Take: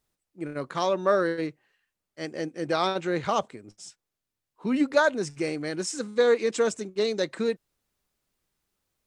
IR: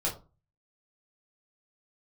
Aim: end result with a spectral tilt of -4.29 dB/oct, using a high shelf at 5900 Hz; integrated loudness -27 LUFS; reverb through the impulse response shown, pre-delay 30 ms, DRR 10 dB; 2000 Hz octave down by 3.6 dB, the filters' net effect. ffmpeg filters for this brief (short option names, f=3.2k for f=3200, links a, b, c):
-filter_complex "[0:a]equalizer=f=2k:t=o:g=-4.5,highshelf=f=5.9k:g=-7,asplit=2[a][b];[1:a]atrim=start_sample=2205,adelay=30[c];[b][c]afir=irnorm=-1:irlink=0,volume=-16.5dB[d];[a][d]amix=inputs=2:normalize=0"